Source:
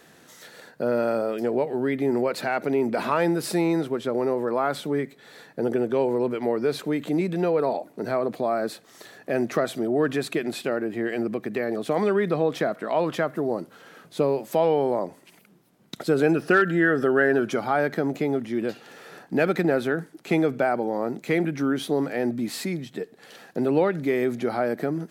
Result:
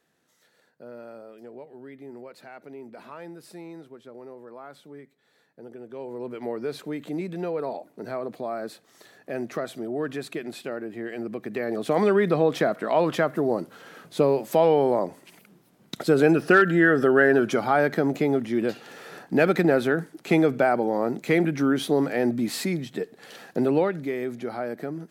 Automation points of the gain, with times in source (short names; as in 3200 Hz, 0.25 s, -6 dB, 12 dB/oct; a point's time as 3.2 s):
5.77 s -18.5 dB
6.42 s -6.5 dB
11.16 s -6.5 dB
12 s +2 dB
23.58 s +2 dB
24.15 s -6 dB